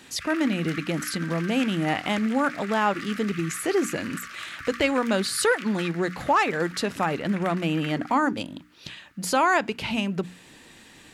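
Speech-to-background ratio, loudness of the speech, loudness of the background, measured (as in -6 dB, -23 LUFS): 13.0 dB, -25.5 LUFS, -38.5 LUFS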